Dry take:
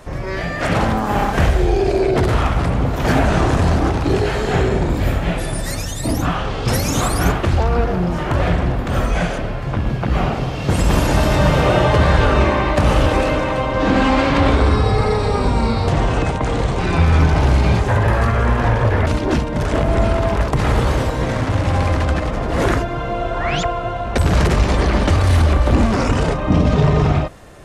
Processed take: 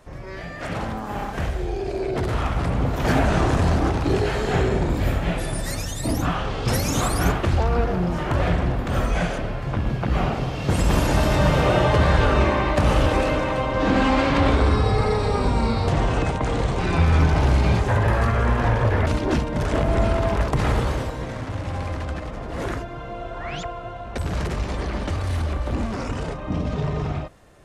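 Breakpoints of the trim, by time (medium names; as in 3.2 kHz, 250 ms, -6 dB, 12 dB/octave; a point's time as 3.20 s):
1.83 s -11 dB
2.84 s -4 dB
20.66 s -4 dB
21.29 s -11 dB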